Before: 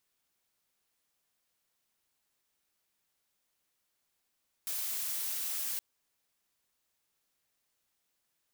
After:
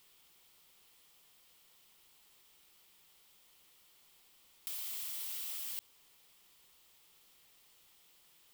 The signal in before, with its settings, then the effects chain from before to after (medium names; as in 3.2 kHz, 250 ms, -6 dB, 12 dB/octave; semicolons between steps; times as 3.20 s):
noise blue, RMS -35.5 dBFS 1.12 s
graphic EQ with 31 bands 100 Hz -10 dB, 250 Hz -7 dB, 630 Hz -6 dB, 1.6 kHz -7 dB, 3.15 kHz +5 dB, 6.3 kHz -4 dB, 10 kHz -3 dB; in parallel at +1 dB: peak limiter -33.5 dBFS; on the sum: compressor with a negative ratio -41 dBFS, ratio -1